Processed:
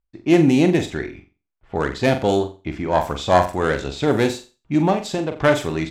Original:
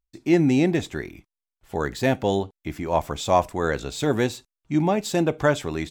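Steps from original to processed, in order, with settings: self-modulated delay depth 0.11 ms; 4.92–5.32 compressor 6:1, threshold -24 dBFS, peak gain reduction 7.5 dB; low-pass opened by the level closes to 2100 Hz, open at -18.5 dBFS; on a send: flutter echo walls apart 7.5 m, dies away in 0.32 s; on the sum: gain +3.5 dB

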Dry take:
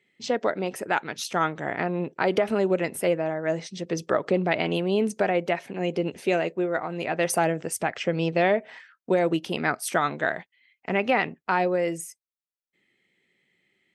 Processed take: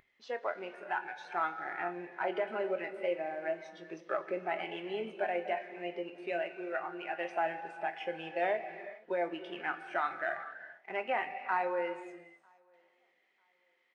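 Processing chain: CVSD 64 kbps; de-esser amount 85%; Bessel high-pass 930 Hz, order 2; upward compressor, threshold -46 dBFS; wow and flutter 22 cents; tape spacing loss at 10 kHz 34 dB; doubler 23 ms -12 dB; feedback echo 0.946 s, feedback 26%, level -23.5 dB; non-linear reverb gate 0.49 s flat, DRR 5.5 dB; spectral noise reduction 10 dB

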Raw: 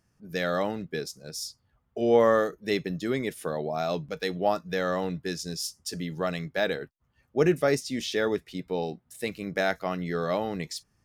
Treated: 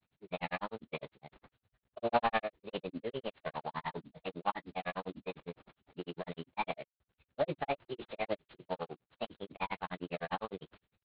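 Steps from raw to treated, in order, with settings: CVSD 16 kbps; wow and flutter 25 cents; grains 78 ms, grains 9.9/s, spray 20 ms, pitch spread up and down by 0 st; formant shift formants +6 st; gain -4.5 dB

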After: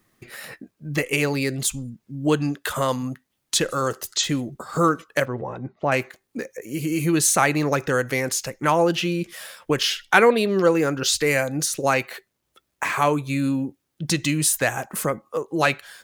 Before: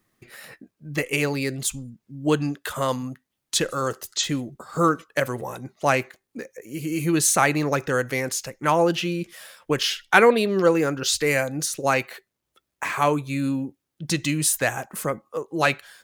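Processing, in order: in parallel at +1 dB: compressor, threshold -29 dBFS, peak gain reduction 18 dB; 5.25–5.92 on the sum: tape spacing loss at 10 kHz 39 dB; gain -1.5 dB

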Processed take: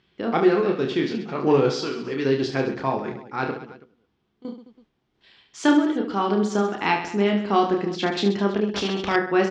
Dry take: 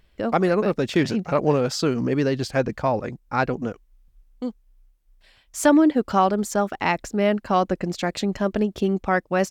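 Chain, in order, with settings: 1.75–2.25 low shelf 410 Hz -11 dB; 3.51–4.45 level quantiser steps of 22 dB; added noise brown -61 dBFS; random-step tremolo; speaker cabinet 150–5600 Hz, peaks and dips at 380 Hz +6 dB, 580 Hz -8 dB, 3300 Hz +5 dB; doubler 14 ms -12.5 dB; reverse bouncing-ball echo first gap 30 ms, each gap 1.4×, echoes 5; 8.74–9.16 spectral compressor 2:1

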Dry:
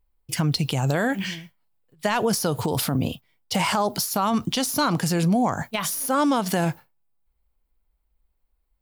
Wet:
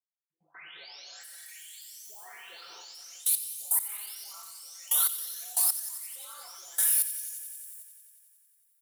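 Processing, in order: spectral delay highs late, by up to 0.916 s; HPF 600 Hz 12 dB/oct; differentiator; comb 5.3 ms, depth 47%; in parallel at -2.5 dB: compressor 6:1, threshold -40 dBFS, peak gain reduction 17.5 dB; on the sum: plate-style reverb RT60 1 s, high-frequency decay 0.9×, DRR -1.5 dB; level quantiser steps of 24 dB; on a send: thin delay 90 ms, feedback 78%, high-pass 2000 Hz, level -12.5 dB

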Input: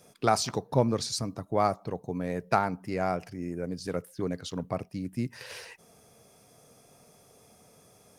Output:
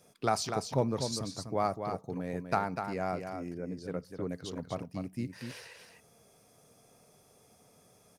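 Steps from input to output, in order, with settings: 3.51–4.31 high shelf 3300 Hz -10 dB; on a send: echo 0.247 s -7 dB; on the sum: gain -5 dB

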